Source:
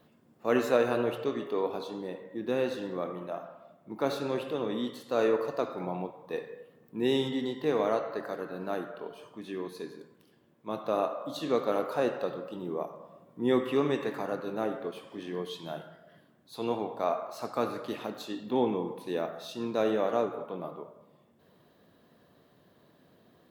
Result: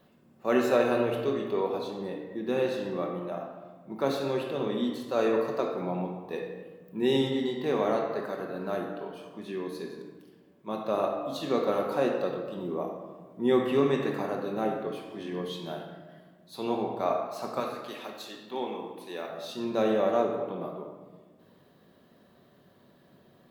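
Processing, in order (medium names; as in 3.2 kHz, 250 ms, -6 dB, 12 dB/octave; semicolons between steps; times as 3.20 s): 17.60–19.30 s: high-pass 990 Hz 6 dB/octave; reverberation RT60 1.3 s, pre-delay 5 ms, DRR 3 dB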